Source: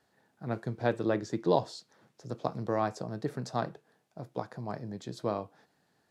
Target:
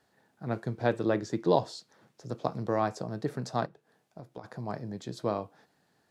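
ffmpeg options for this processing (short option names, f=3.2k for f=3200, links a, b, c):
-filter_complex "[0:a]asplit=3[a][b][c];[a]afade=t=out:st=3.65:d=0.02[d];[b]acompressor=threshold=-44dB:ratio=4,afade=t=in:st=3.65:d=0.02,afade=t=out:st=4.43:d=0.02[e];[c]afade=t=in:st=4.43:d=0.02[f];[d][e][f]amix=inputs=3:normalize=0,volume=1.5dB"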